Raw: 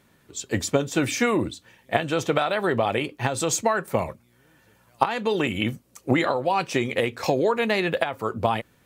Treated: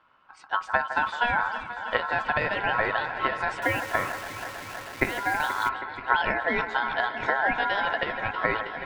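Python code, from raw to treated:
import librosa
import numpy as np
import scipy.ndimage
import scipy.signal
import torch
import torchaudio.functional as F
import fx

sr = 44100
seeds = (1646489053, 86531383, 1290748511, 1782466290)

y = scipy.signal.sosfilt(scipy.signal.butter(2, 2000.0, 'lowpass', fs=sr, output='sos'), x)
y = fx.low_shelf(y, sr, hz=150.0, db=8.0)
y = fx.echo_alternate(y, sr, ms=160, hz=840.0, feedback_pct=89, wet_db=-10.0)
y = fx.quant_dither(y, sr, seeds[0], bits=6, dither='none', at=(3.62, 5.69))
y = y * np.sin(2.0 * np.pi * 1200.0 * np.arange(len(y)) / sr)
y = y * 10.0 ** (-1.5 / 20.0)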